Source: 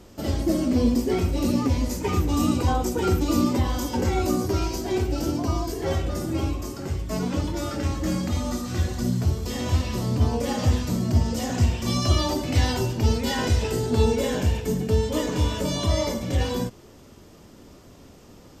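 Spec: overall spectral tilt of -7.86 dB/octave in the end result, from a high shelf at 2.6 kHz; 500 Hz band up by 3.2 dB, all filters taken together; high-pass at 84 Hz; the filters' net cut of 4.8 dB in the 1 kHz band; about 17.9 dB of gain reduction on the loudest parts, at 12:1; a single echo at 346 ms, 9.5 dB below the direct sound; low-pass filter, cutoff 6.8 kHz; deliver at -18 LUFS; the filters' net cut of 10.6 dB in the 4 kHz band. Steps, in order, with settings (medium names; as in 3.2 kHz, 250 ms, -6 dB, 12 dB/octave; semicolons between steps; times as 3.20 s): high-pass 84 Hz; low-pass 6.8 kHz; peaking EQ 500 Hz +6 dB; peaking EQ 1 kHz -7.5 dB; treble shelf 2.6 kHz -8 dB; peaking EQ 4 kHz -6 dB; compression 12:1, threshold -35 dBFS; delay 346 ms -9.5 dB; trim +21 dB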